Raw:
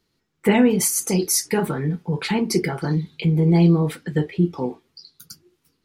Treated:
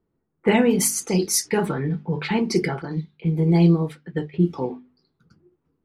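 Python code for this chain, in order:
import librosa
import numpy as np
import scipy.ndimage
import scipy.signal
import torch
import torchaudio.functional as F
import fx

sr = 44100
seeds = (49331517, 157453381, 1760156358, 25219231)

y = fx.hum_notches(x, sr, base_hz=50, count=5)
y = fx.env_lowpass(y, sr, base_hz=870.0, full_db=-15.5)
y = fx.upward_expand(y, sr, threshold_db=-36.0, expansion=1.5, at=(2.82, 4.34))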